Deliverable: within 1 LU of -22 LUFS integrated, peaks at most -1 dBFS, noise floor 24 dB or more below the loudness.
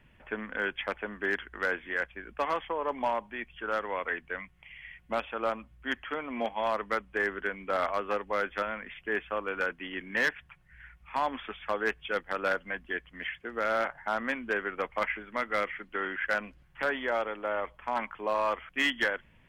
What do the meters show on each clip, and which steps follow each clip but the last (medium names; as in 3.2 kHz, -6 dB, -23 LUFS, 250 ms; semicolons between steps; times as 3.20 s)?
clipped samples 0.4%; clipping level -20.0 dBFS; loudness -32.5 LUFS; peak level -20.0 dBFS; loudness target -22.0 LUFS
-> clip repair -20 dBFS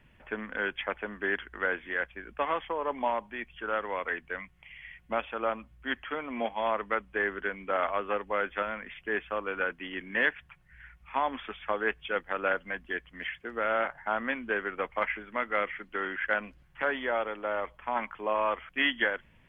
clipped samples 0.0%; loudness -32.0 LUFS; peak level -13.0 dBFS; loudness target -22.0 LUFS
-> trim +10 dB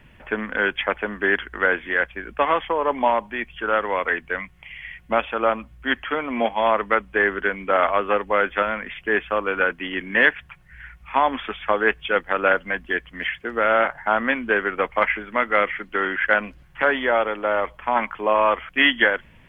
loudness -22.0 LUFS; peak level -3.0 dBFS; noise floor -51 dBFS